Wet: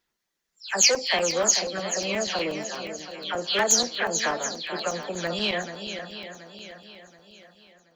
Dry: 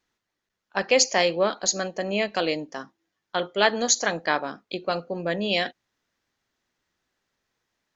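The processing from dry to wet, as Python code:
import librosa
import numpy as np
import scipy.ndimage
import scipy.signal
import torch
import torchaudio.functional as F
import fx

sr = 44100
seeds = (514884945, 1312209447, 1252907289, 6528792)

p1 = fx.spec_delay(x, sr, highs='early', ms=234)
p2 = fx.high_shelf(p1, sr, hz=4500.0, db=10.5)
p3 = p2 + fx.echo_swing(p2, sr, ms=728, ratio=1.5, feedback_pct=39, wet_db=-10.0, dry=0)
p4 = fx.buffer_crackle(p3, sr, first_s=0.47, period_s=0.12, block=128, kind='zero')
p5 = fx.transformer_sat(p4, sr, knee_hz=2100.0)
y = p5 * librosa.db_to_amplitude(-2.0)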